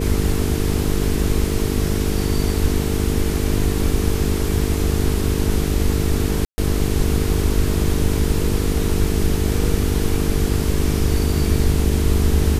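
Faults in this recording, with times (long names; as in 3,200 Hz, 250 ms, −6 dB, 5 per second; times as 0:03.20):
mains buzz 50 Hz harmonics 9 −23 dBFS
0:06.45–0:06.58: drop-out 130 ms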